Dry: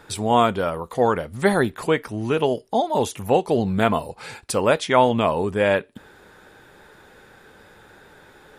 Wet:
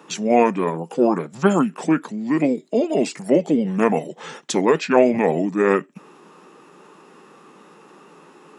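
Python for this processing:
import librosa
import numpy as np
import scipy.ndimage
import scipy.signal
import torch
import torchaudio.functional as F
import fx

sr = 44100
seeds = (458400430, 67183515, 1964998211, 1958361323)

y = scipy.signal.sosfilt(scipy.signal.ellip(4, 1.0, 50, 160.0, 'highpass', fs=sr, output='sos'), x)
y = fx.formant_shift(y, sr, semitones=-5)
y = y * librosa.db_to_amplitude(2.5)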